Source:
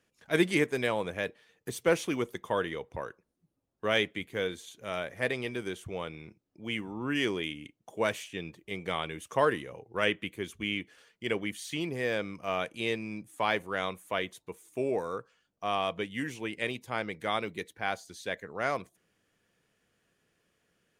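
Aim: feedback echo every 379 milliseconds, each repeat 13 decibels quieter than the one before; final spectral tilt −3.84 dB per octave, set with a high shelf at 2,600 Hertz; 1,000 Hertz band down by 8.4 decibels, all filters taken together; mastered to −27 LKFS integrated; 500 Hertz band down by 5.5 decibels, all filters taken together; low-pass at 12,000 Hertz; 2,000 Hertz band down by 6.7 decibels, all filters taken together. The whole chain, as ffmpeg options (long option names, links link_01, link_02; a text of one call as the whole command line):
ffmpeg -i in.wav -af "lowpass=12000,equalizer=frequency=500:width_type=o:gain=-4.5,equalizer=frequency=1000:width_type=o:gain=-8.5,equalizer=frequency=2000:width_type=o:gain=-8.5,highshelf=frequency=2600:gain=6,aecho=1:1:379|758|1137:0.224|0.0493|0.0108,volume=9.5dB" out.wav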